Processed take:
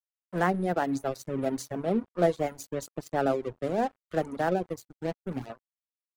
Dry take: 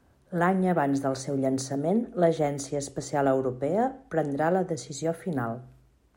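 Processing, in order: 4.86–5.50 s: median filter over 41 samples; crossover distortion -36.5 dBFS; reverb removal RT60 1 s

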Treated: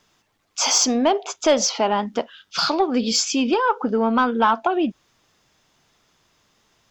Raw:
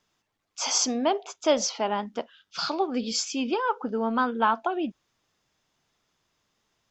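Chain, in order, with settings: in parallel at +2 dB: compression, threshold -31 dBFS, peak gain reduction 14 dB; on the sum: saturation -10.5 dBFS, distortion -22 dB; trim +4 dB

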